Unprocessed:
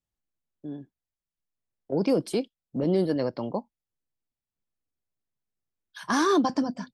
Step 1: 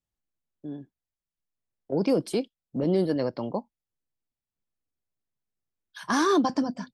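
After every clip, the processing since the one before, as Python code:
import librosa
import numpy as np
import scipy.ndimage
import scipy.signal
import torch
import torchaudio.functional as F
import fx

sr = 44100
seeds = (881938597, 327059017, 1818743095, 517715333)

y = x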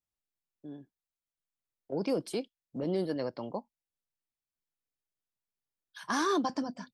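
y = fx.low_shelf(x, sr, hz=410.0, db=-5.0)
y = F.gain(torch.from_numpy(y), -4.5).numpy()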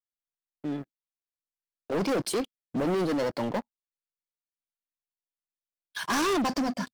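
y = fx.leveller(x, sr, passes=5)
y = F.gain(torch.from_numpy(y), -5.0).numpy()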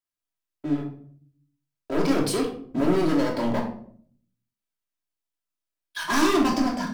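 y = fx.room_shoebox(x, sr, seeds[0], volume_m3=700.0, walls='furnished', distance_m=2.9)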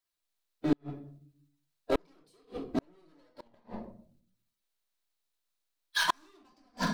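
y = fx.spec_quant(x, sr, step_db=15)
y = fx.graphic_eq_31(y, sr, hz=(125, 250, 4000), db=(-10, -8, 6))
y = fx.gate_flip(y, sr, shuts_db=-18.0, range_db=-42)
y = F.gain(torch.from_numpy(y), 3.5).numpy()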